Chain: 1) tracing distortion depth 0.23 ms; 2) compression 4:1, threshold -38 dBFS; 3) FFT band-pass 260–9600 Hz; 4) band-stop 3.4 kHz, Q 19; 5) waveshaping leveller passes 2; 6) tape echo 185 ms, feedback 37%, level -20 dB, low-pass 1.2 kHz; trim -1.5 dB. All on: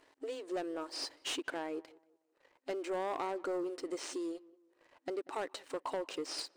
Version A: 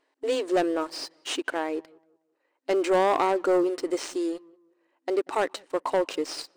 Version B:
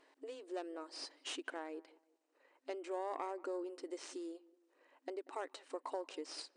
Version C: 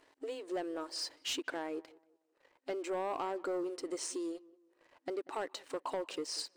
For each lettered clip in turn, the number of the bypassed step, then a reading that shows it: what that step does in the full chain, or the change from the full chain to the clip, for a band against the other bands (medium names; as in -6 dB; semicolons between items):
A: 2, mean gain reduction 7.5 dB; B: 5, crest factor change +5.5 dB; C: 1, 8 kHz band +3.0 dB